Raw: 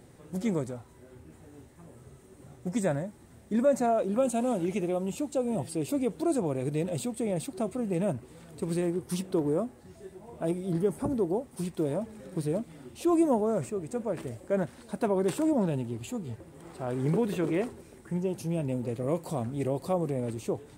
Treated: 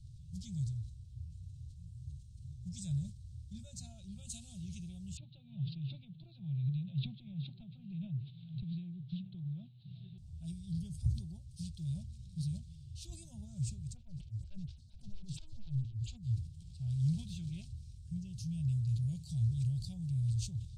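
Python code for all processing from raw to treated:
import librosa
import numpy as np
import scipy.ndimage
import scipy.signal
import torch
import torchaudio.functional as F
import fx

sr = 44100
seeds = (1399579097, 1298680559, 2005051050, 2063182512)

y = fx.chain(x, sr, fx.cheby1_bandpass(low_hz=130.0, high_hz=3900.0, order=5),
    fx.air_absorb(metres=160.0),
    fx.band_squash(depth_pct=100), at=(5.17, 10.18))
y = fx.chain(y, sr, fx.air_absorb(metres=71.0),
    fx.clip_hard(threshold_db=-27.0),
    fx.stagger_phaser(hz=4.3), at=(13.94, 16.23))
y = scipy.signal.sosfilt(scipy.signal.cheby2(4, 50, [260.0, 2000.0], 'bandstop', fs=sr, output='sos'), y)
y = fx.env_lowpass(y, sr, base_hz=2400.0, full_db=-23.5)
y = fx.sustainer(y, sr, db_per_s=120.0)
y = F.gain(torch.from_numpy(y), 10.5).numpy()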